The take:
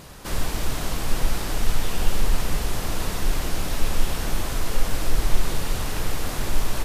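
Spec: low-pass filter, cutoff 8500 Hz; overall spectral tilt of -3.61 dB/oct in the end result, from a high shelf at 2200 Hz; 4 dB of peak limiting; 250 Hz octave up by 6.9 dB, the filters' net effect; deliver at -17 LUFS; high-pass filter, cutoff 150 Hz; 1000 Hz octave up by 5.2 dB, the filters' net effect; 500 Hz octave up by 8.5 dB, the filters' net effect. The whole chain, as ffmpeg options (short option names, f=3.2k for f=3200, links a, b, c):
-af "highpass=150,lowpass=8.5k,equalizer=f=250:t=o:g=7.5,equalizer=f=500:t=o:g=7.5,equalizer=f=1k:t=o:g=3,highshelf=f=2.2k:g=3.5,volume=10.5dB,alimiter=limit=-7.5dB:level=0:latency=1"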